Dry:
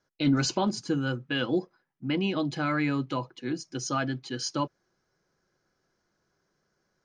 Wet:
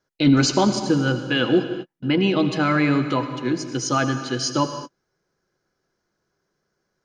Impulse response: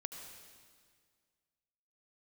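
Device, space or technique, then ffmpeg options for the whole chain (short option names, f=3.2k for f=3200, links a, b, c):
keyed gated reverb: -filter_complex "[0:a]equalizer=f=410:t=o:w=0.51:g=2.5,asplit=3[a][b][c];[1:a]atrim=start_sample=2205[d];[b][d]afir=irnorm=-1:irlink=0[e];[c]apad=whole_len=310520[f];[e][f]sidechaingate=range=-55dB:threshold=-53dB:ratio=16:detection=peak,volume=6.5dB[g];[a][g]amix=inputs=2:normalize=0"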